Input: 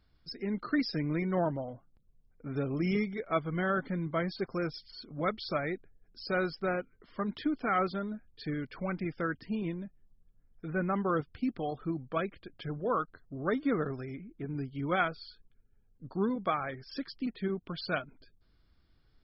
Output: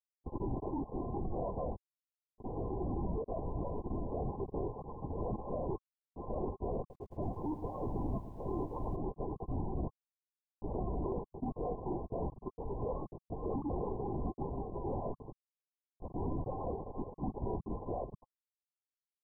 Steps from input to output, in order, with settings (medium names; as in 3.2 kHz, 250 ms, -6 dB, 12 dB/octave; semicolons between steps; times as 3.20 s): dynamic bell 260 Hz, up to -5 dB, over -47 dBFS, Q 5; gain riding within 3 dB 0.5 s; saturation -28.5 dBFS, distortion -14 dB; rotary cabinet horn 0.75 Hz; Schmitt trigger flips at -50 dBFS; brick-wall FIR band-pass 150–1100 Hz; LPC vocoder at 8 kHz whisper; 6.79–8.96 s: bit-crushed delay 109 ms, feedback 80%, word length 12-bit, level -13.5 dB; trim +5.5 dB